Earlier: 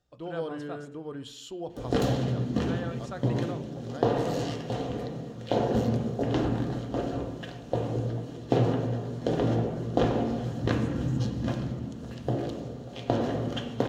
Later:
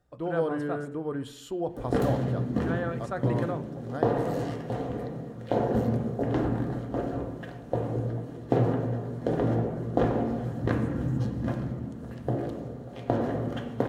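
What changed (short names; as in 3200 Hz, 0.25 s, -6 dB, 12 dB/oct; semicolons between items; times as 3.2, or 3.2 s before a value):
speech +6.0 dB; master: add band shelf 4300 Hz -9.5 dB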